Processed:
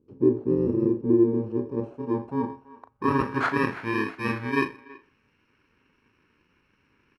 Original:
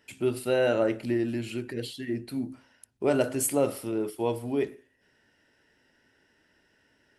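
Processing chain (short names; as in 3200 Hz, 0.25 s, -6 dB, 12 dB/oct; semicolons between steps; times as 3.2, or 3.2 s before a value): FFT order left unsorted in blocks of 64 samples; doubler 37 ms -11.5 dB; speakerphone echo 0.33 s, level -20 dB; low-pass sweep 380 Hz -> 2000 Hz, 1.17–3.86; gain +5 dB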